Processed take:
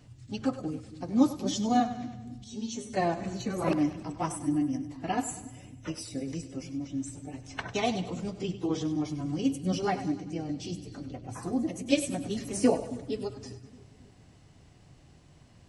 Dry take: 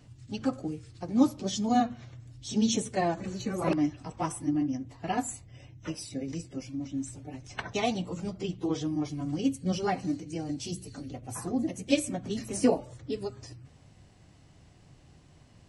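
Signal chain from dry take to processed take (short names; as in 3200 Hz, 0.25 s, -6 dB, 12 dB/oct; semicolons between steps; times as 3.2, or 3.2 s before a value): 2.44–2.93 resonator 81 Hz, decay 0.23 s, harmonics odd, mix 90%; 10.08–11.43 air absorption 82 m; split-band echo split 340 Hz, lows 0.272 s, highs 99 ms, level -13 dB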